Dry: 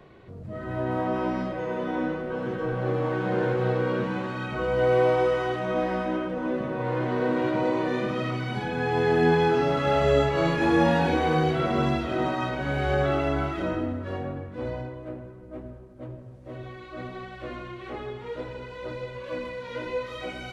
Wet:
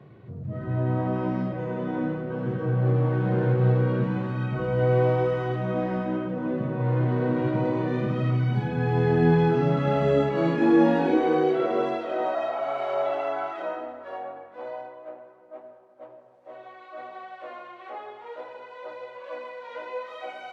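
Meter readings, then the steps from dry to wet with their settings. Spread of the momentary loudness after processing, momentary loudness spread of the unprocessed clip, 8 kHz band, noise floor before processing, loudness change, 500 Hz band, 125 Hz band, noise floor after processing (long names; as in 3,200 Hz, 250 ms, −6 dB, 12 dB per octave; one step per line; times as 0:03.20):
19 LU, 17 LU, can't be measured, −44 dBFS, +1.5 dB, −0.5 dB, +5.5 dB, −49 dBFS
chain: healed spectral selection 0:12.37–0:13.26, 610–1,700 Hz after
low-shelf EQ 260 Hz +6 dB
high-pass filter sweep 120 Hz → 720 Hz, 0:09.26–0:12.70
high-shelf EQ 4,600 Hz −10.5 dB
level −3.5 dB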